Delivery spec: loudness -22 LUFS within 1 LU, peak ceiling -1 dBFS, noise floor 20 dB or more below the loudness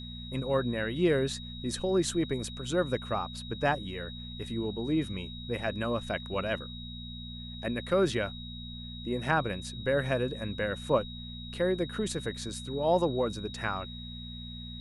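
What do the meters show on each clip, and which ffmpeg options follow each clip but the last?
hum 60 Hz; highest harmonic 240 Hz; hum level -40 dBFS; steady tone 3.8 kHz; tone level -44 dBFS; loudness -32.0 LUFS; peak level -12.5 dBFS; loudness target -22.0 LUFS
-> -af "bandreject=f=60:t=h:w=4,bandreject=f=120:t=h:w=4,bandreject=f=180:t=h:w=4,bandreject=f=240:t=h:w=4"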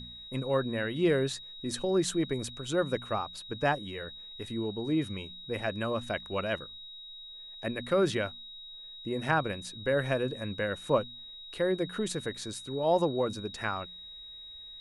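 hum not found; steady tone 3.8 kHz; tone level -44 dBFS
-> -af "bandreject=f=3800:w=30"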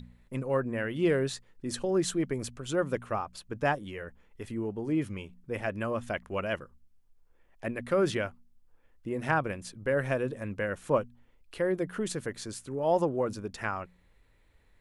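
steady tone not found; loudness -32.0 LUFS; peak level -12.5 dBFS; loudness target -22.0 LUFS
-> -af "volume=3.16"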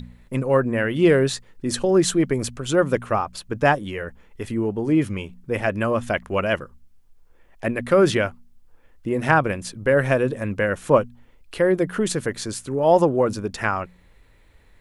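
loudness -22.0 LUFS; peak level -2.5 dBFS; noise floor -54 dBFS

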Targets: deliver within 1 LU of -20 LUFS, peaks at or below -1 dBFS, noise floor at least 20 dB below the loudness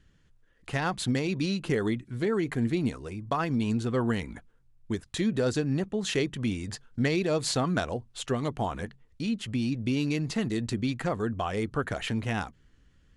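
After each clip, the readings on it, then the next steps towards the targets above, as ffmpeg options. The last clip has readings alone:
loudness -30.0 LUFS; peak level -14.5 dBFS; loudness target -20.0 LUFS
-> -af "volume=3.16"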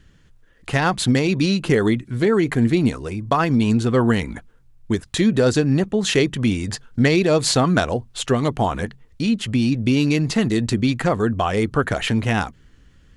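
loudness -20.0 LUFS; peak level -4.5 dBFS; noise floor -53 dBFS

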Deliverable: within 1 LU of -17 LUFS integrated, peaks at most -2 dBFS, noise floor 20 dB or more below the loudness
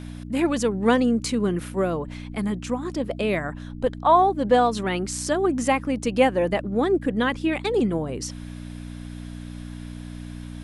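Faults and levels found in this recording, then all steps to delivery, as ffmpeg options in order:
hum 60 Hz; highest harmonic 300 Hz; hum level -34 dBFS; loudness -23.5 LUFS; peak level -6.0 dBFS; loudness target -17.0 LUFS
-> -af "bandreject=f=60:t=h:w=4,bandreject=f=120:t=h:w=4,bandreject=f=180:t=h:w=4,bandreject=f=240:t=h:w=4,bandreject=f=300:t=h:w=4"
-af "volume=2.11,alimiter=limit=0.794:level=0:latency=1"

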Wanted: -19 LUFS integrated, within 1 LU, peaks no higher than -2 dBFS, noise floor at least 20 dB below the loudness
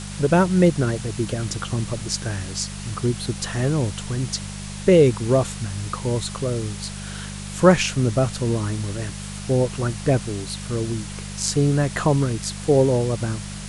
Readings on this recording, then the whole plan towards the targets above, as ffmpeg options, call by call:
hum 50 Hz; highest harmonic 200 Hz; hum level -31 dBFS; noise floor -33 dBFS; noise floor target -43 dBFS; loudness -22.5 LUFS; peak level -2.5 dBFS; loudness target -19.0 LUFS
-> -af "bandreject=f=50:t=h:w=4,bandreject=f=100:t=h:w=4,bandreject=f=150:t=h:w=4,bandreject=f=200:t=h:w=4"
-af "afftdn=nr=10:nf=-33"
-af "volume=1.5,alimiter=limit=0.794:level=0:latency=1"

